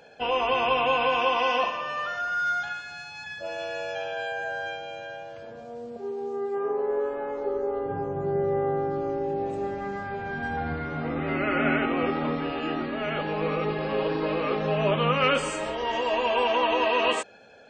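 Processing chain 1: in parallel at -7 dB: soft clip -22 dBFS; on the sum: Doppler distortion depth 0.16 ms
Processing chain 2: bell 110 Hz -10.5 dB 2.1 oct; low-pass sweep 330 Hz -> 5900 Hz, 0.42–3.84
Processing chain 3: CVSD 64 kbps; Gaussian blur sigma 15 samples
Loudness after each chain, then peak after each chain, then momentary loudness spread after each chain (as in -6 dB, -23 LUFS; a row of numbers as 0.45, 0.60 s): -24.5, -27.0, -33.5 LUFS; -9.5, -10.0, -17.5 dBFS; 11, 12, 16 LU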